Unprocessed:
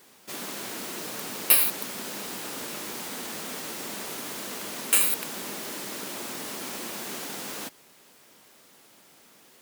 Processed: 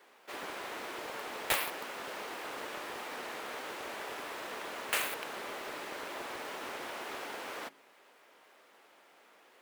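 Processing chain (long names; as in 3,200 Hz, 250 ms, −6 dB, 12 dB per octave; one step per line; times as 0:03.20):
three-way crossover with the lows and the highs turned down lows −21 dB, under 350 Hz, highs −15 dB, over 2,900 Hz
hum removal 54.92 Hz, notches 7
highs frequency-modulated by the lows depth 0.36 ms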